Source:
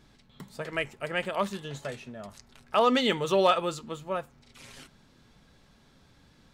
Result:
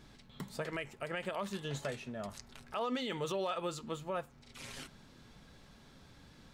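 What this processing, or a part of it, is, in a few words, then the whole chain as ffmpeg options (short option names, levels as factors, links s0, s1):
stacked limiters: -af "alimiter=limit=0.168:level=0:latency=1:release=352,alimiter=limit=0.0794:level=0:latency=1:release=68,alimiter=level_in=1.78:limit=0.0631:level=0:latency=1:release=478,volume=0.562,volume=1.19"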